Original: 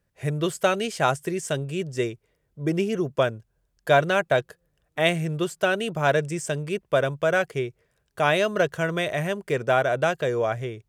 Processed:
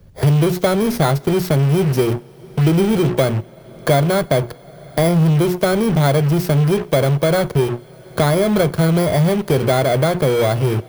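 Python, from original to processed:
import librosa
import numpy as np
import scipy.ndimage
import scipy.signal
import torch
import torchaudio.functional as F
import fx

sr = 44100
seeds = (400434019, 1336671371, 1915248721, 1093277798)

p1 = fx.bit_reversed(x, sr, seeds[0], block=16)
p2 = fx.low_shelf(p1, sr, hz=320.0, db=11.5)
p3 = fx.hum_notches(p2, sr, base_hz=60, count=7)
p4 = fx.fuzz(p3, sr, gain_db=37.0, gate_db=-36.0)
p5 = p3 + F.gain(torch.from_numpy(p4), -6.0).numpy()
p6 = fx.high_shelf(p5, sr, hz=6600.0, db=-9.0)
p7 = fx.rev_double_slope(p6, sr, seeds[1], early_s=0.38, late_s=4.1, knee_db=-19, drr_db=17.5)
p8 = fx.band_squash(p7, sr, depth_pct=70)
y = F.gain(torch.from_numpy(p8), -1.0).numpy()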